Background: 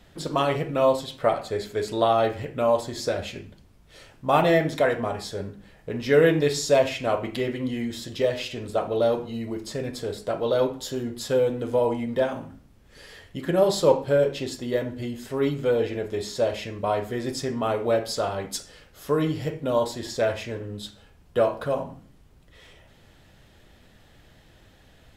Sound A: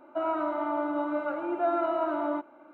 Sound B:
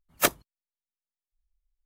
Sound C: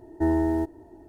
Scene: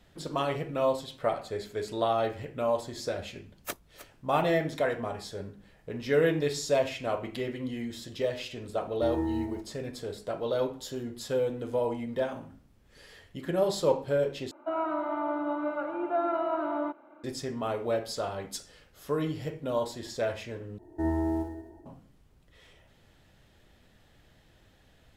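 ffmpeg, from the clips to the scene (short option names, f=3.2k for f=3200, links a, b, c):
-filter_complex "[3:a]asplit=2[a][b];[0:a]volume=-6.5dB[c];[2:a]aecho=1:1:310:0.2[d];[a]aecho=1:1:151:0.631[e];[b]aecho=1:1:50|110|182|268.4|372.1:0.631|0.398|0.251|0.158|0.1[f];[c]asplit=3[g][h][i];[g]atrim=end=14.514[j];[1:a]atrim=end=2.73,asetpts=PTS-STARTPTS,volume=-1.5dB[k];[h]atrim=start=17.236:end=20.784[l];[f]atrim=end=1.08,asetpts=PTS-STARTPTS,volume=-7.5dB[m];[i]atrim=start=21.856[n];[d]atrim=end=1.85,asetpts=PTS-STARTPTS,volume=-14.5dB,afade=t=in:d=0.004:c=hsin,afade=t=out:st=1.846:d=0.004:c=hsin,adelay=152145S[o];[e]atrim=end=1.08,asetpts=PTS-STARTPTS,volume=-10.5dB,afade=t=in:d=0.004:c=hsin,afade=t=out:st=1.076:d=0.004:c=hsin,adelay=8810[p];[j][k]acrossfade=d=0.004:c1=hsin:c2=hsin[q];[q][l]acrossfade=d=0.004:c1=hsin:c2=hsin[r];[r][m]acrossfade=d=0.004:c1=hsin:c2=hsin[s];[s][n]acrossfade=d=0.004:c1=hsin:c2=hsin[t];[t][o][p]amix=inputs=3:normalize=0"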